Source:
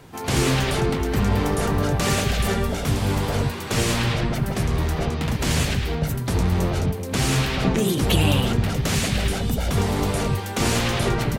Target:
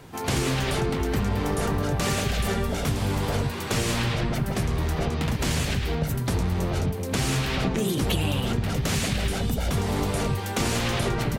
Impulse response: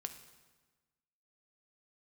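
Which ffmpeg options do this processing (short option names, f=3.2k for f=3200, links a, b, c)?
-af "acompressor=threshold=-21dB:ratio=6"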